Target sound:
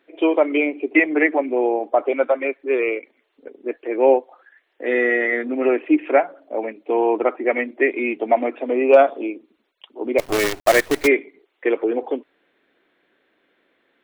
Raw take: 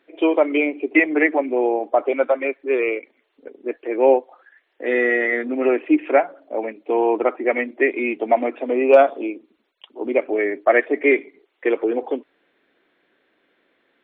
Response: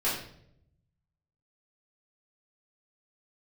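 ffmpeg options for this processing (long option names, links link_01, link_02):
-filter_complex "[0:a]asplit=3[link_01][link_02][link_03];[link_01]afade=type=out:start_time=10.18:duration=0.02[link_04];[link_02]acrusher=bits=4:dc=4:mix=0:aa=0.000001,afade=type=in:start_time=10.18:duration=0.02,afade=type=out:start_time=11.06:duration=0.02[link_05];[link_03]afade=type=in:start_time=11.06:duration=0.02[link_06];[link_04][link_05][link_06]amix=inputs=3:normalize=0"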